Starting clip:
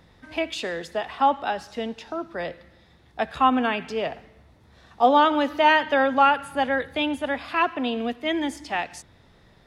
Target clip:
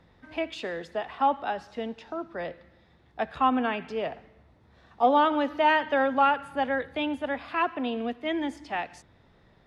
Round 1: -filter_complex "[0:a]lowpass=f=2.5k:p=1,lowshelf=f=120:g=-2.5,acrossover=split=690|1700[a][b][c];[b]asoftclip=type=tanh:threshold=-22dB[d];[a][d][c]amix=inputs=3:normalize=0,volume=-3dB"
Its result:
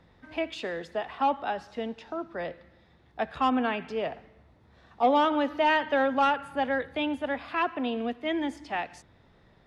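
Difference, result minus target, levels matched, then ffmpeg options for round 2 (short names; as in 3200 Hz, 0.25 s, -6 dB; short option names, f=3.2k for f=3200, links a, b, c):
soft clip: distortion +15 dB
-filter_complex "[0:a]lowpass=f=2.5k:p=1,lowshelf=f=120:g=-2.5,acrossover=split=690|1700[a][b][c];[b]asoftclip=type=tanh:threshold=-11.5dB[d];[a][d][c]amix=inputs=3:normalize=0,volume=-3dB"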